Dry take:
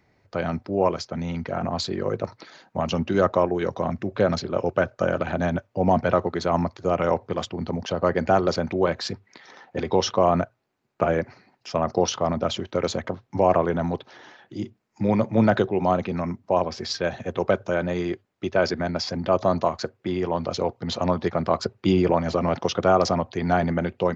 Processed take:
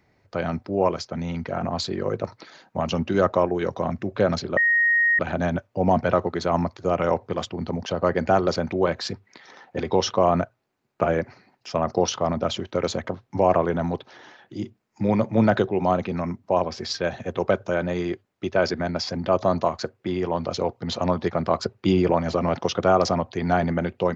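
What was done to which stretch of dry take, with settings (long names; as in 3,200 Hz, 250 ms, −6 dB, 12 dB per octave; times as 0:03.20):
0:04.57–0:05.19: beep over 1,870 Hz −16 dBFS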